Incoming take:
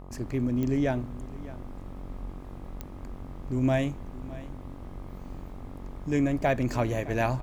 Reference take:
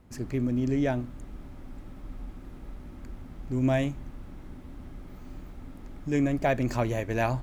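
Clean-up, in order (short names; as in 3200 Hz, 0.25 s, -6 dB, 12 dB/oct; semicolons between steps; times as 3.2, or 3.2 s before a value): de-click; de-hum 46.2 Hz, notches 27; inverse comb 0.612 s -18 dB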